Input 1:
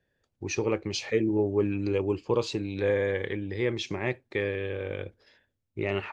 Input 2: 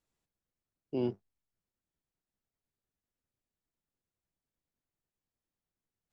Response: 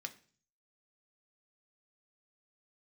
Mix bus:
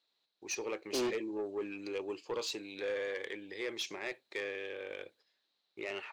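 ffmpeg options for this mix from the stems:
-filter_complex "[0:a]agate=range=-17dB:threshold=-52dB:ratio=16:detection=peak,highshelf=frequency=3100:gain=10.5,volume=-13.5dB[link_01];[1:a]lowpass=frequency=4000:width_type=q:width=8.6,volume=2.5dB[link_02];[link_01][link_02]amix=inputs=2:normalize=0,highpass=400,dynaudnorm=framelen=170:gausssize=5:maxgain=6.5dB,asoftclip=type=tanh:threshold=-29.5dB"

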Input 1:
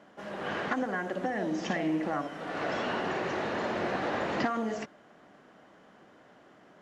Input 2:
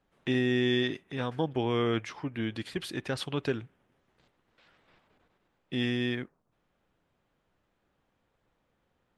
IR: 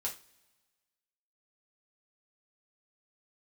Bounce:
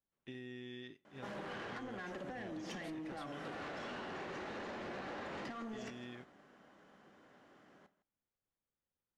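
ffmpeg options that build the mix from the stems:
-filter_complex "[0:a]acompressor=threshold=-35dB:ratio=6,asoftclip=type=tanh:threshold=-36dB,adelay=1050,volume=-1dB,asplit=3[link_01][link_02][link_03];[link_02]volume=-8dB[link_04];[link_03]volume=-16dB[link_05];[1:a]acompressor=threshold=-30dB:ratio=3,volume=-16.5dB,asplit=2[link_06][link_07];[link_07]volume=-12.5dB[link_08];[2:a]atrim=start_sample=2205[link_09];[link_04][link_08]amix=inputs=2:normalize=0[link_10];[link_10][link_09]afir=irnorm=-1:irlink=0[link_11];[link_05]aecho=0:1:159:1[link_12];[link_01][link_06][link_11][link_12]amix=inputs=4:normalize=0,agate=range=-7dB:threshold=-50dB:ratio=16:detection=peak,equalizer=frequency=680:width=1.5:gain=-2.5,acompressor=threshold=-42dB:ratio=6"

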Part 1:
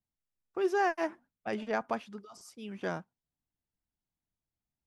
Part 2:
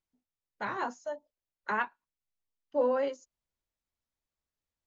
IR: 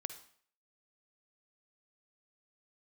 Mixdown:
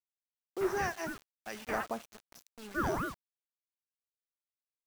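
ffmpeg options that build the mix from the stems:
-filter_complex "[0:a]equalizer=frequency=5900:width_type=o:width=0.29:gain=13,acrossover=split=1000[link_01][link_02];[link_01]aeval=exprs='val(0)*(1-0.7/2+0.7/2*cos(2*PI*1.6*n/s))':channel_layout=same[link_03];[link_02]aeval=exprs='val(0)*(1-0.7/2-0.7/2*cos(2*PI*1.6*n/s))':channel_layout=same[link_04];[link_03][link_04]amix=inputs=2:normalize=0,volume=-6dB,asplit=3[link_05][link_06][link_07];[link_06]volume=-3.5dB[link_08];[link_07]volume=-21dB[link_09];[1:a]lowpass=frequency=2500:poles=1,aeval=exprs='val(0)*sin(2*PI*510*n/s+510*0.8/3.6*sin(2*PI*3.6*n/s))':channel_layout=same,volume=-2.5dB[link_10];[2:a]atrim=start_sample=2205[link_11];[link_08][link_11]afir=irnorm=-1:irlink=0[link_12];[link_09]aecho=0:1:414:1[link_13];[link_05][link_10][link_12][link_13]amix=inputs=4:normalize=0,acrusher=bits=7:mix=0:aa=0.000001"

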